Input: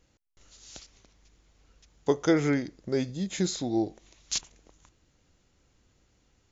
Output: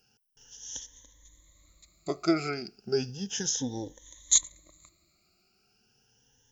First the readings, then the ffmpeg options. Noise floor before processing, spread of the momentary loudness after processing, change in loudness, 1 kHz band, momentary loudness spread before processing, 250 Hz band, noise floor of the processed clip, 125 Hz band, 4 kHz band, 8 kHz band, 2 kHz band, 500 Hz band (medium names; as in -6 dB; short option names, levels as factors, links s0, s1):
-69 dBFS, 20 LU, 0.0 dB, -1.5 dB, 22 LU, -4.5 dB, -70 dBFS, -6.0 dB, +2.5 dB, no reading, -3.5 dB, -4.0 dB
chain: -af "afftfilt=real='re*pow(10,22/40*sin(2*PI*(1.1*log(max(b,1)*sr/1024/100)/log(2)-(0.34)*(pts-256)/sr)))':imag='im*pow(10,22/40*sin(2*PI*(1.1*log(max(b,1)*sr/1024/100)/log(2)-(0.34)*(pts-256)/sr)))':win_size=1024:overlap=0.75,aemphasis=mode=production:type=75fm,volume=0.447"